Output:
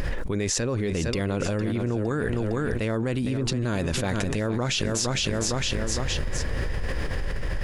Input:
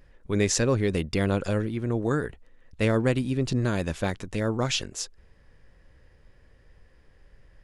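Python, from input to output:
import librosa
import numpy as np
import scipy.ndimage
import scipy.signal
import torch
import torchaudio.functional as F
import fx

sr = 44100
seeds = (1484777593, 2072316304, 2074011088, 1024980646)

p1 = x + fx.echo_feedback(x, sr, ms=459, feedback_pct=36, wet_db=-13.5, dry=0)
p2 = fx.env_flatten(p1, sr, amount_pct=100)
y = p2 * librosa.db_to_amplitude(-6.0)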